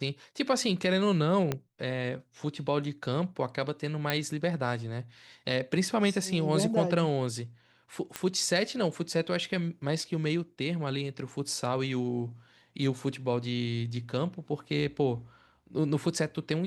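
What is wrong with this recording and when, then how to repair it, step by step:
1.52 s: pop -15 dBFS
4.10 s: pop -12 dBFS
8.16 s: pop -16 dBFS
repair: de-click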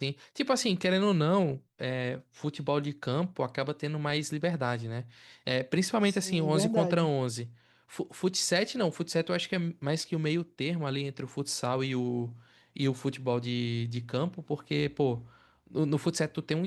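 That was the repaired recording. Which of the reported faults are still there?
1.52 s: pop

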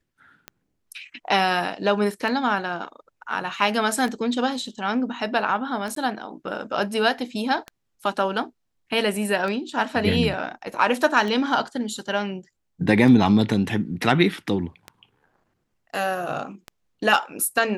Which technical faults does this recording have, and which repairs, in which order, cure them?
tick 33 1/3 rpm -18 dBFS
5.95–5.96 s: dropout 13 ms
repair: de-click; interpolate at 5.95 s, 13 ms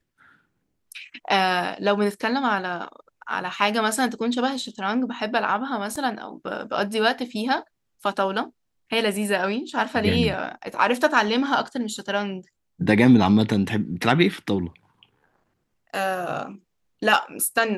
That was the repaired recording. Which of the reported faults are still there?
nothing left

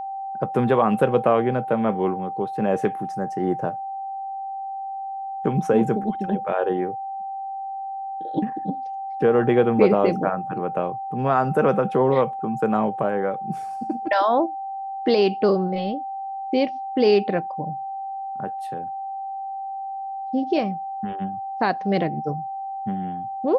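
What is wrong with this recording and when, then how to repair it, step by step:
whine 780 Hz -28 dBFS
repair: band-stop 780 Hz, Q 30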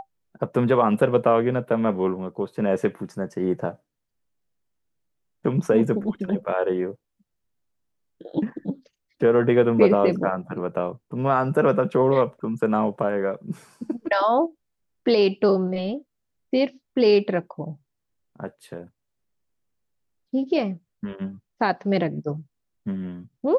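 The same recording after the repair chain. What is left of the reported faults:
nothing left

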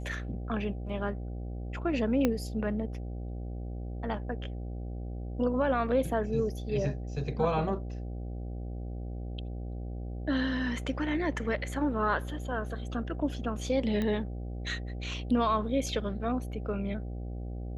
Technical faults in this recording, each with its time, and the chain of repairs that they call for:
buzz 60 Hz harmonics 13 -37 dBFS
2.25 s: pop -13 dBFS
14.02 s: pop -20 dBFS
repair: de-click; de-hum 60 Hz, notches 13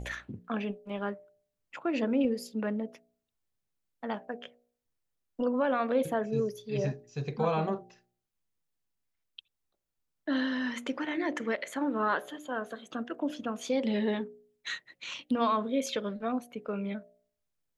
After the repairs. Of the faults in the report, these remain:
2.25 s: pop

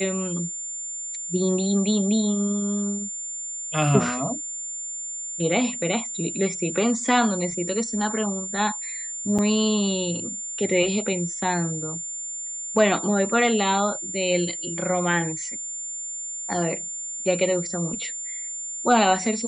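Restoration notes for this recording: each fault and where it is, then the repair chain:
whine 7.2 kHz -30 dBFS
9.38–9.39 s: dropout 7 ms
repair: band-stop 7.2 kHz, Q 30; interpolate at 9.38 s, 7 ms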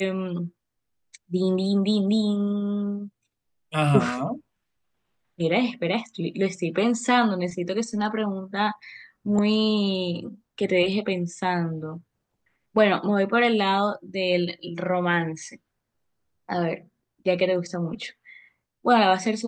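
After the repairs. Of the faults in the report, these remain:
nothing left

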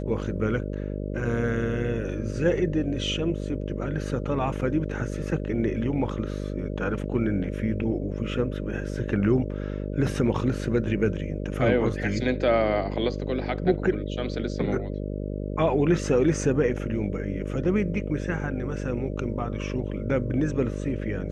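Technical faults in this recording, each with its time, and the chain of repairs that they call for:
buzz 50 Hz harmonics 12 -31 dBFS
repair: de-hum 50 Hz, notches 12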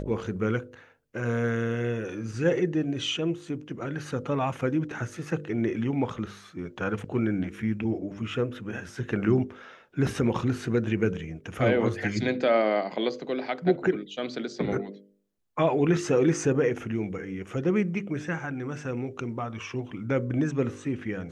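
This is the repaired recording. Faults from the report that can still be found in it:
nothing left

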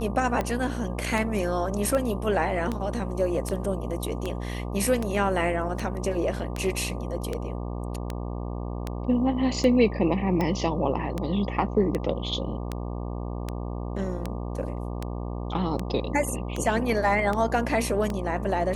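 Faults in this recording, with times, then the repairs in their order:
buzz 60 Hz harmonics 20 -32 dBFS
tick 78 rpm -15 dBFS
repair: de-click; de-hum 60 Hz, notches 20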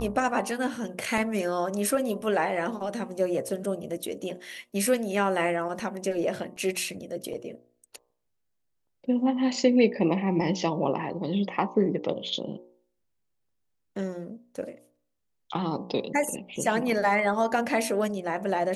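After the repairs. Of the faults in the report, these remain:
nothing left

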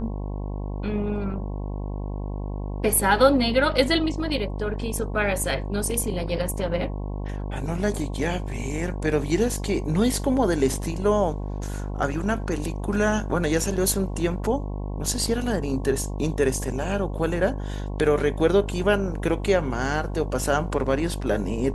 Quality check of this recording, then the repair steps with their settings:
buzz 50 Hz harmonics 22 -30 dBFS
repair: de-hum 50 Hz, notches 22

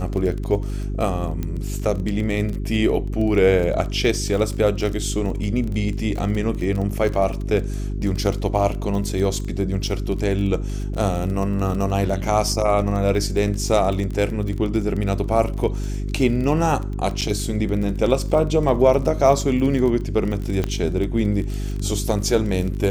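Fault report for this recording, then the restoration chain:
crackle 24 per s -26 dBFS
hum 50 Hz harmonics 8 -26 dBFS
1.43 s: pop -14 dBFS
17.21–17.22 s: dropout 7.5 ms
20.64 s: pop -10 dBFS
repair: de-click; de-hum 50 Hz, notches 8; interpolate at 17.21 s, 7.5 ms

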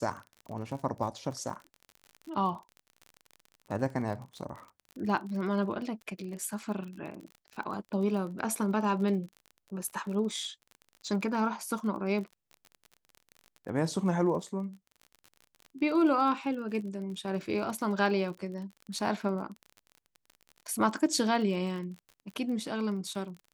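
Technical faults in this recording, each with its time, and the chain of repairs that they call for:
crackle 37 per s -39 dBFS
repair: de-click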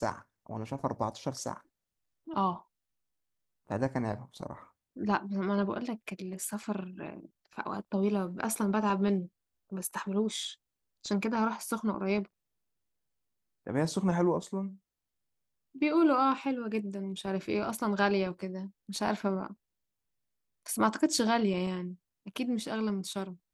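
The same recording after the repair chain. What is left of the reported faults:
nothing left

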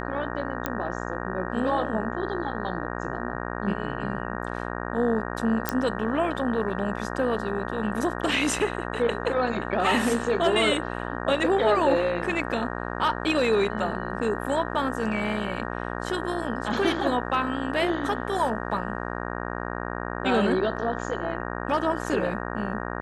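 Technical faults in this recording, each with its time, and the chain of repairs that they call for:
buzz 60 Hz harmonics 31 -32 dBFS
0.66 s: pop -11 dBFS
5.69 s: pop -7 dBFS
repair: de-click; de-hum 60 Hz, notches 31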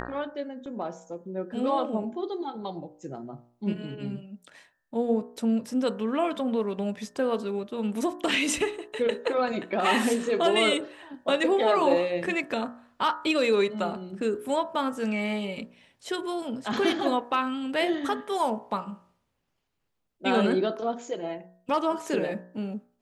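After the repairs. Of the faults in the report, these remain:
nothing left

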